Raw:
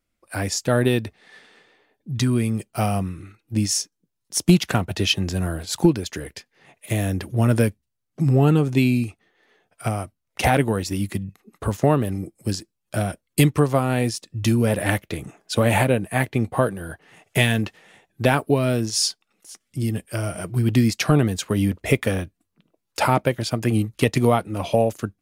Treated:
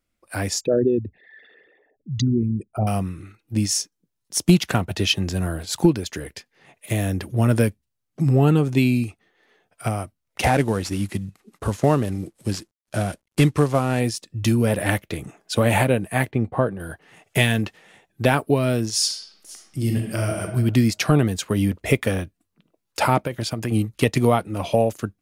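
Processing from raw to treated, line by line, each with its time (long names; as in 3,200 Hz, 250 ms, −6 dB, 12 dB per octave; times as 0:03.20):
0:00.61–0:02.87: spectral envelope exaggerated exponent 3
0:10.45–0:14.00: variable-slope delta modulation 64 kbit/s
0:16.31–0:16.80: low-pass filter 1,300 Hz 6 dB per octave
0:19.05–0:20.42: thrown reverb, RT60 1 s, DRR 1 dB
0:23.26–0:23.72: downward compressor 10 to 1, threshold −20 dBFS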